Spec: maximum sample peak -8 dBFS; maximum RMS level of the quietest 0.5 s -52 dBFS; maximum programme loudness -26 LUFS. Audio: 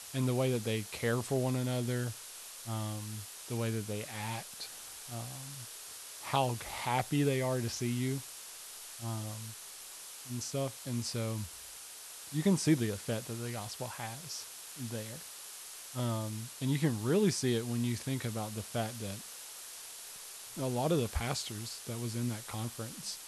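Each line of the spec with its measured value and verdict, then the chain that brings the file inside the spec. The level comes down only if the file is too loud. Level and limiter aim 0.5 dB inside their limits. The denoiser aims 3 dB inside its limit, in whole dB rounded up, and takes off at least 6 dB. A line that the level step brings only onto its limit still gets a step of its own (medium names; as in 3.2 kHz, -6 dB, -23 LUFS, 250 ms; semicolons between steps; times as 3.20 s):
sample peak -16.0 dBFS: pass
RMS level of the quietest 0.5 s -48 dBFS: fail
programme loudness -36.0 LUFS: pass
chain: noise reduction 7 dB, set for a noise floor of -48 dBFS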